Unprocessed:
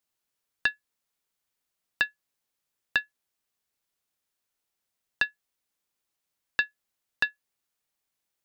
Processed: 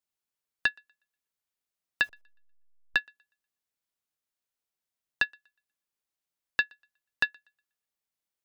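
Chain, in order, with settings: 2.04–2.96 s: send-on-delta sampling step -45.5 dBFS; thinning echo 121 ms, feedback 26%, level -23 dB; upward expansion 1.5:1, over -36 dBFS

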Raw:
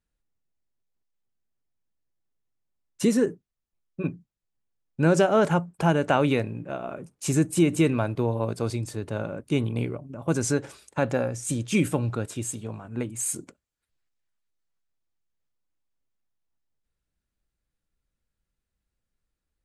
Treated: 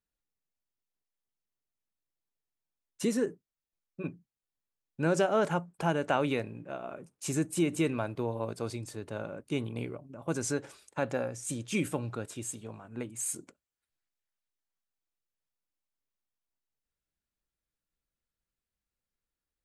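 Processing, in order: bass shelf 190 Hz -7 dB; trim -5.5 dB

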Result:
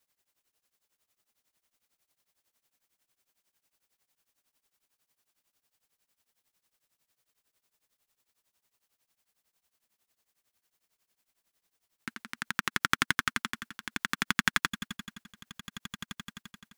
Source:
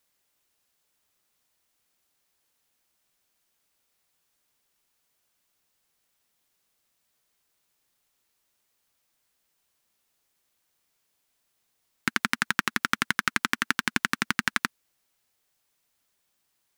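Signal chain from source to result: echo with a slow build-up 86 ms, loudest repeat 8, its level -16.5 dB; tremolo triangle 11 Hz, depth 95%

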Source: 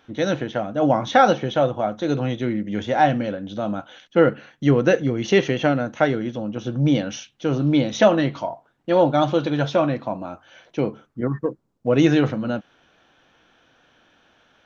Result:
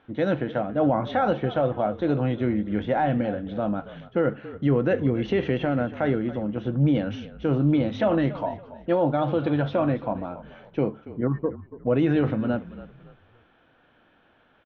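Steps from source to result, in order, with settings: peak limiter -12 dBFS, peak gain reduction 9 dB; distance through air 390 m; frequency-shifting echo 281 ms, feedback 35%, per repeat -42 Hz, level -16 dB

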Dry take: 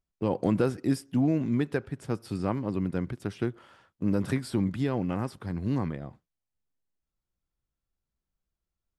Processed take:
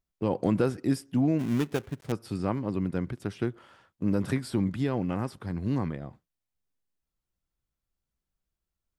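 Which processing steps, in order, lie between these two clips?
1.39–2.12 s: dead-time distortion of 0.28 ms

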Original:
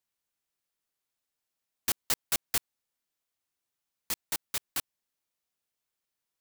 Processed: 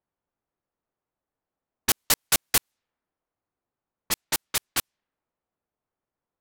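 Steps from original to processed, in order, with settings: level-controlled noise filter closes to 990 Hz, open at -31 dBFS; trim +9 dB

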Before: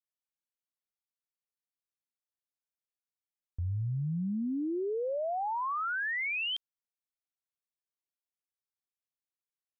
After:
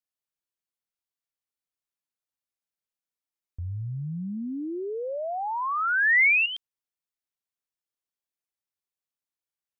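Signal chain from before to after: 4.37–6.46 s: peaking EQ 2.1 kHz +14.5 dB 1.3 oct

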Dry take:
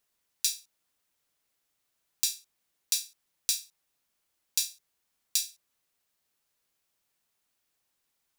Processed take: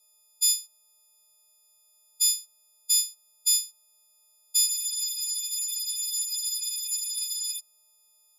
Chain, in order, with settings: partials quantised in pitch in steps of 6 st; Bessel low-pass 12 kHz, order 4; peak limiter -16.5 dBFS, peak gain reduction 11 dB; static phaser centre 710 Hz, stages 4; spectral freeze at 4.69 s, 2.89 s; trim +4.5 dB

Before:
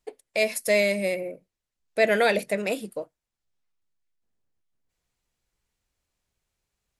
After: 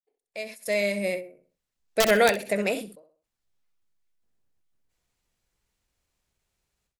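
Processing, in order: fade-in on the opening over 1.61 s; integer overflow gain 10.5 dB; on a send: feedback delay 64 ms, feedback 23%, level -11.5 dB; on the sum: endings held to a fixed fall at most 130 dB/s; trim +2 dB

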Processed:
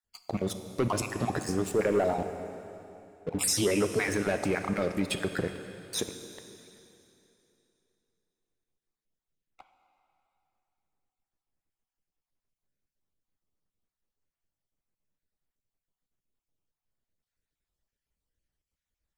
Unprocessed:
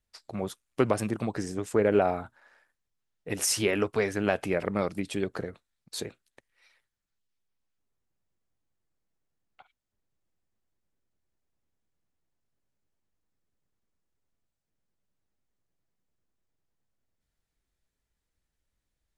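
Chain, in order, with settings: random holes in the spectrogram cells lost 38%; 2.14–3.39 s: Chebyshev low-pass 960 Hz, order 8; waveshaping leveller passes 2; peak limiter -19.5 dBFS, peak gain reduction 9.5 dB; plate-style reverb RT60 3 s, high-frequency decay 0.95×, DRR 7.5 dB

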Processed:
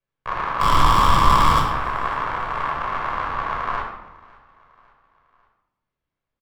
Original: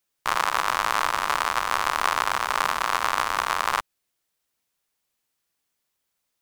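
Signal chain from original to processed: low-pass 2.2 kHz 12 dB/octave; bass shelf 250 Hz +9 dB; 0.60–1.60 s: waveshaping leveller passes 5; feedback delay 551 ms, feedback 51%, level -24 dB; reverberation RT60 0.90 s, pre-delay 15 ms, DRR -1 dB; trim -7 dB

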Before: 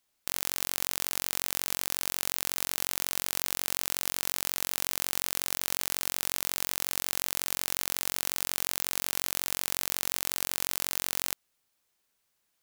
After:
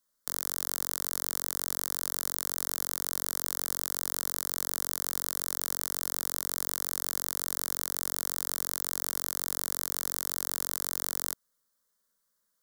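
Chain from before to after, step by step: static phaser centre 510 Hz, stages 8

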